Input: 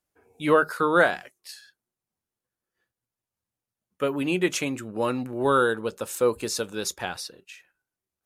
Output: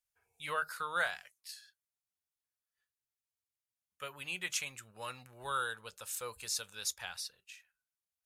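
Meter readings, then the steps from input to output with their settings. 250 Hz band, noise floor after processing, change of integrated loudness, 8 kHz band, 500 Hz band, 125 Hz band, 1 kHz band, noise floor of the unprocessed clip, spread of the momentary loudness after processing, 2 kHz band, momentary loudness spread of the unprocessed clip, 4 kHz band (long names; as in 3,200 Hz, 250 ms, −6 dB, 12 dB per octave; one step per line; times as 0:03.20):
−30.5 dB, below −85 dBFS, −13.5 dB, −5.0 dB, −22.5 dB, −19.5 dB, −12.5 dB, below −85 dBFS, 14 LU, −10.0 dB, 15 LU, −6.0 dB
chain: guitar amp tone stack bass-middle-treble 10-0-10
level −4.5 dB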